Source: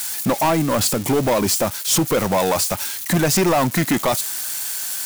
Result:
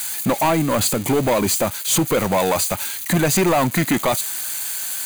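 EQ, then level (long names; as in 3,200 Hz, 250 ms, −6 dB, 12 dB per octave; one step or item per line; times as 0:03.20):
Butterworth band-reject 5,400 Hz, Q 6.3
parametric band 2,300 Hz +3 dB 0.23 octaves
0.0 dB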